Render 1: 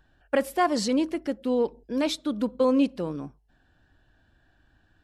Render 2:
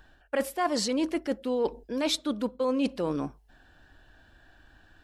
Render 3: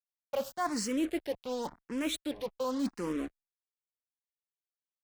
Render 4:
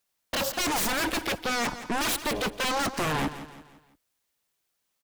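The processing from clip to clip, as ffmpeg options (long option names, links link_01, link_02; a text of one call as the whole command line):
ffmpeg -i in.wav -af "equalizer=frequency=130:width=0.52:gain=-7,areverse,acompressor=threshold=-34dB:ratio=5,areverse,volume=8.5dB" out.wav
ffmpeg -i in.wav -filter_complex "[0:a]acrusher=bits=5:mix=0:aa=0.5,asplit=2[link_01][link_02];[link_02]afreqshift=0.91[link_03];[link_01][link_03]amix=inputs=2:normalize=1,volume=-2.5dB" out.wav
ffmpeg -i in.wav -af "aeval=exprs='0.1*sin(PI/2*7.94*val(0)/0.1)':channel_layout=same,aecho=1:1:169|338|507|676:0.224|0.0963|0.0414|0.0178,volume=-4dB" out.wav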